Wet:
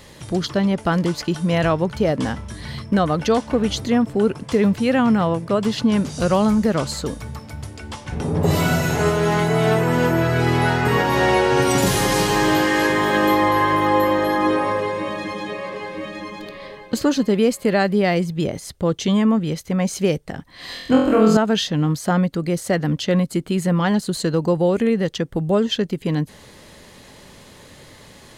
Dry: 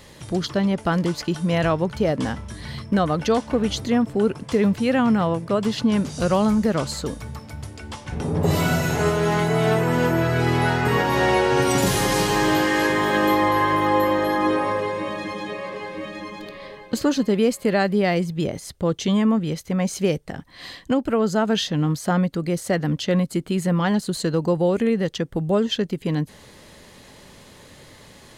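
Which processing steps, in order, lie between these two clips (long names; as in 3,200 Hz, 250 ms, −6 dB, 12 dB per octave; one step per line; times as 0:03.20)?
0:20.66–0:21.37: flutter between parallel walls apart 4 metres, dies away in 0.79 s
level +2 dB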